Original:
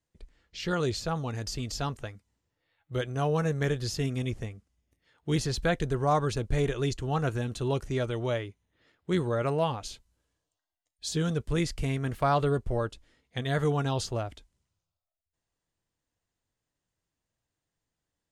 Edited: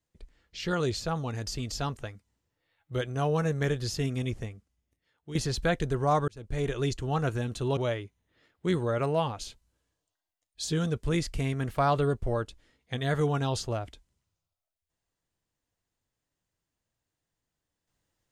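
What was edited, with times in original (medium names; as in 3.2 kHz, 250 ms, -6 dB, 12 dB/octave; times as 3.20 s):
4.38–5.35 s: fade out, to -13 dB
6.28–6.76 s: fade in
7.77–8.21 s: delete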